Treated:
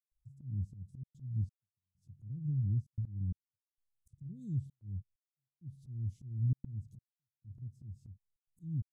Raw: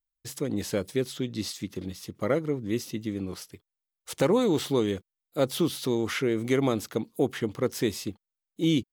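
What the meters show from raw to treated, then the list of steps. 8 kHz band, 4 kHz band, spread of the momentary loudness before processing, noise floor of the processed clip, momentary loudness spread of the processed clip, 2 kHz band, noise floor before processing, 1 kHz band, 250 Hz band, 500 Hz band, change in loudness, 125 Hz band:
under -35 dB, under -40 dB, 12 LU, under -85 dBFS, 18 LU, under -40 dB, under -85 dBFS, under -40 dB, -19.0 dB, under -40 dB, -11.0 dB, -1.0 dB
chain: compressor 2.5:1, threshold -32 dBFS, peak gain reduction 9.5 dB; Chebyshev band-stop 130–8100 Hz, order 3; treble ducked by the level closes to 1700 Hz, closed at -41.5 dBFS; bell 120 Hz +3.5 dB 1.2 oct; step gate ".xxxxxxxx.xxx..." 131 bpm -60 dB; tilt shelf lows +7 dB, about 790 Hz; auto swell 0.242 s; gain +3 dB

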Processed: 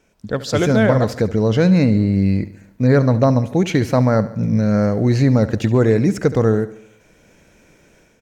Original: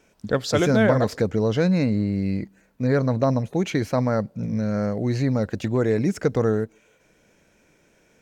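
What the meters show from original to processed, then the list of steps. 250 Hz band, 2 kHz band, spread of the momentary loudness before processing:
+6.5 dB, +4.0 dB, 7 LU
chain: low shelf 130 Hz +5 dB; AGC gain up to 9 dB; on a send: feedback echo 71 ms, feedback 54%, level -16 dB; on the sum: gain -1.5 dB

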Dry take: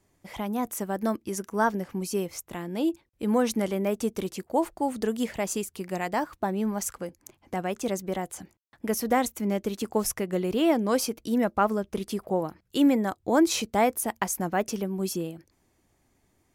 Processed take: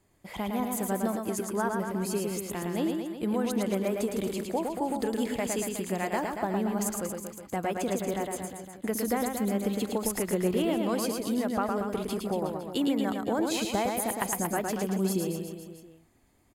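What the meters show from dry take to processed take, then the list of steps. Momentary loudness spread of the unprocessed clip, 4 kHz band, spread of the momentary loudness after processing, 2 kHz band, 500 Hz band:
10 LU, -2.0 dB, 5 LU, -2.5 dB, -2.0 dB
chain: notch 5700 Hz, Q 5.2; compressor, threshold -26 dBFS, peak gain reduction 10 dB; on a send: reverse bouncing-ball echo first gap 0.11 s, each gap 1.1×, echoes 5

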